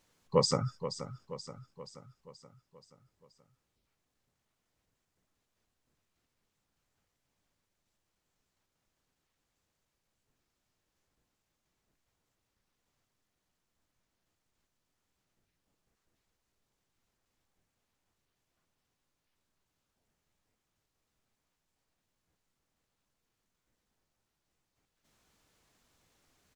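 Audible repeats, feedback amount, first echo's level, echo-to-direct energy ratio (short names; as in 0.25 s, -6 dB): 5, 54%, -11.5 dB, -10.0 dB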